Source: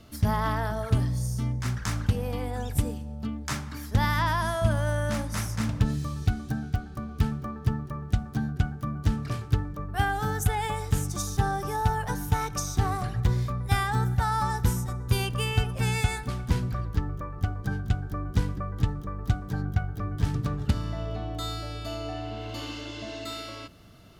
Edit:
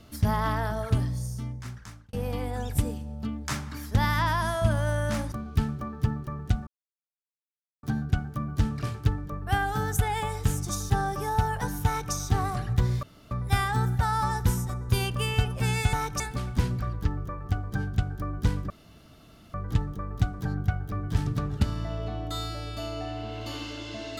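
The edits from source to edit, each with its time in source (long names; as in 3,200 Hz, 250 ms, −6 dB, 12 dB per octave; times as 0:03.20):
0:00.81–0:02.13: fade out
0:05.32–0:06.95: remove
0:08.30: splice in silence 1.16 s
0:12.33–0:12.60: duplicate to 0:16.12
0:13.50: splice in room tone 0.28 s
0:18.62: splice in room tone 0.84 s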